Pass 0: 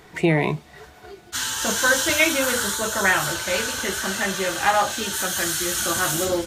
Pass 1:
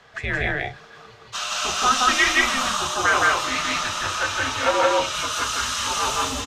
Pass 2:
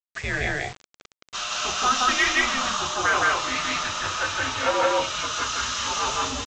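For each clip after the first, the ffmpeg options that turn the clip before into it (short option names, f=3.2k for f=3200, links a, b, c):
-filter_complex "[0:a]afreqshift=-280,acrossover=split=450 6400:gain=0.224 1 0.0891[a][b][c];[a][b][c]amix=inputs=3:normalize=0,aecho=1:1:169.1|204.1:1|0.316"
-af "aresample=16000,acrusher=bits=5:mix=0:aa=0.000001,aresample=44100,asoftclip=type=tanh:threshold=-7dB,volume=-2dB"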